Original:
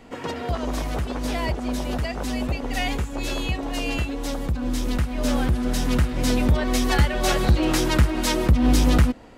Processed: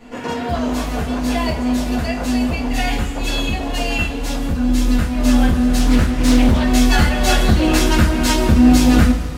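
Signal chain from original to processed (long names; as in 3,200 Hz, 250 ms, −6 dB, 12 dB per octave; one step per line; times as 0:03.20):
coupled-rooms reverb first 0.28 s, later 2.4 s, from −18 dB, DRR −7 dB
0:05.79–0:06.64: highs frequency-modulated by the lows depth 0.37 ms
level −1.5 dB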